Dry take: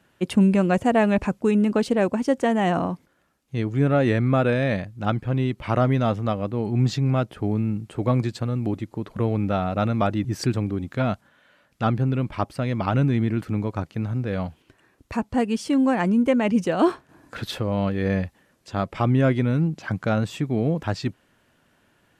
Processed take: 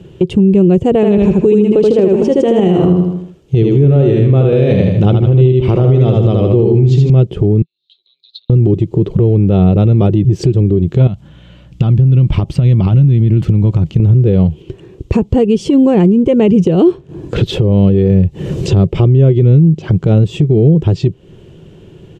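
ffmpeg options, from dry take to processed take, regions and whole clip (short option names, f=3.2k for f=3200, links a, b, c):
-filter_complex "[0:a]asettb=1/sr,asplit=3[a][b][c];[a]atrim=end=0.954[d];[b]atrim=start=0.95:end=7.1,asetpts=PTS-STARTPTS,afade=t=in:d=0.004:c=qsin,afade=t=out:st=6.146:d=0.004:c=qsin,lowshelf=f=230:g=-6,aecho=1:1:78|156|234|312|390:0.708|0.283|0.113|0.0453|0.0181,atrim=end_sample=271215[e];[c]atrim=start=7.096[f];[d][e]acrossfade=d=0.004:c1=hsin:c2=qsin[g];[g][f]acrossfade=d=0.004:c1=qsin:c2=hsin,asettb=1/sr,asplit=3[h][i][j];[h]atrim=end=7.624[k];[i]atrim=start=7.62:end=8.5,asetpts=PTS-STARTPTS,afade=t=in:d=0.004:c=qsin,afade=t=out:st=0.876:d=0.004:c=qsin,acompressor=threshold=-29dB:ratio=8:attack=3.2:release=140:knee=1:detection=peak,asuperpass=centerf=3900:order=4:qfactor=6.7,afreqshift=34[l];[j]atrim=start=8.496[m];[k][l]acrossfade=d=0.004:c1=hsin:c2=qsin[n];[n][m]acrossfade=d=0.004:c1=qsin:c2=hsin,asettb=1/sr,asplit=3[o][p][q];[o]atrim=end=11.074[r];[p]atrim=start=11.07:end=14,asetpts=PTS-STARTPTS,afade=t=in:d=0.004:c=qsin,afade=t=out:st=2.926:d=0.004:c=qsin,equalizer=f=420:t=o:w=0.54:g=-14.5,acompressor=threshold=-31dB:ratio=12:attack=3.2:release=140:knee=1:detection=peak,aeval=exprs='val(0)+0.000355*(sin(2*PI*60*n/s)+sin(2*PI*2*60*n/s)/2+sin(2*PI*3*60*n/s)/3+sin(2*PI*4*60*n/s)/4+sin(2*PI*5*60*n/s)/5)':c=same[s];[q]atrim=start=13.996[t];[r][s]acrossfade=d=0.004:c1=hsin:c2=qsin[u];[u][t]acrossfade=d=0.004:c1=qsin:c2=hsin,asettb=1/sr,asplit=3[v][w][x];[v]atrim=end=18.104[y];[w]atrim=start=18.1:end=18.9,asetpts=PTS-STARTPTS,afade=t=in:d=0.004:c=qsin,afade=t=out:st=0.796:d=0.004:c=qsin,equalizer=f=120:w=1.4:g=5.5,bandreject=f=3.3k:w=20,acompressor=mode=upward:threshold=-27dB:ratio=2.5:attack=3.2:release=140:knee=2.83:detection=peak[z];[x]atrim=start=18.896[aa];[y][z]acrossfade=d=0.004:c1=hsin:c2=qsin[ab];[ab][aa]acrossfade=d=0.004:c1=qsin:c2=hsin,firequalizer=gain_entry='entry(110,0);entry(160,4);entry(250,-13);entry(370,4);entry(620,-15);entry(1600,-26);entry(3000,-11);entry(4400,-19);entry(7300,-18);entry(10000,-28)':delay=0.05:min_phase=1,acompressor=threshold=-35dB:ratio=5,alimiter=level_in=30.5dB:limit=-1dB:release=50:level=0:latency=1,volume=-1dB"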